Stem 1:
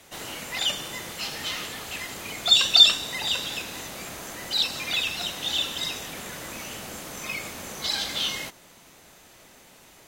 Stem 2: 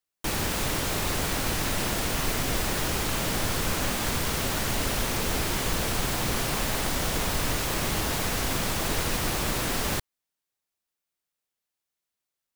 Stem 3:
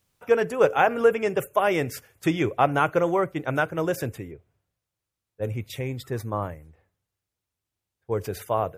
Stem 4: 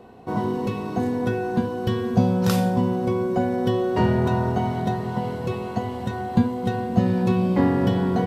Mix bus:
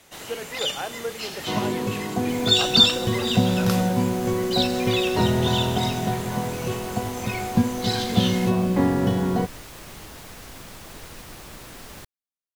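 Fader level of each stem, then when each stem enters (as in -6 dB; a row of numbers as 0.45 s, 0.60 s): -1.5 dB, -13.5 dB, -12.5 dB, -1.0 dB; 0.00 s, 2.05 s, 0.00 s, 1.20 s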